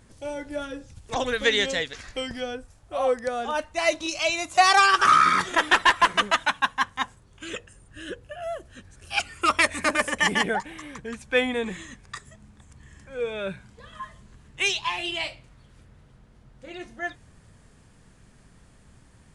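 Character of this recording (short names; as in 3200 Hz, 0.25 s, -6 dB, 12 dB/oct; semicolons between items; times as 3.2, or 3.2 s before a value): noise floor -55 dBFS; spectral tilt -2.0 dB/oct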